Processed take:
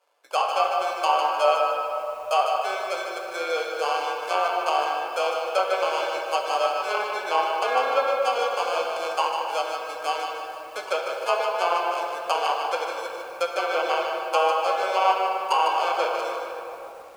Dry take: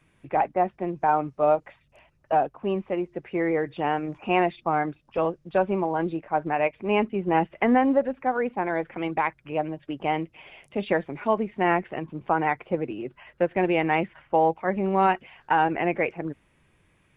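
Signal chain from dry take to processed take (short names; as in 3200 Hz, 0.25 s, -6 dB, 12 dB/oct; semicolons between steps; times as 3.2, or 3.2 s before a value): sample-rate reducer 1900 Hz, jitter 0%; treble ducked by the level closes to 2300 Hz, closed at -17 dBFS; Chebyshev high-pass 500 Hz, order 4; shoebox room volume 220 m³, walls hard, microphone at 0.44 m; lo-fi delay 0.152 s, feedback 35%, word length 8-bit, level -6.5 dB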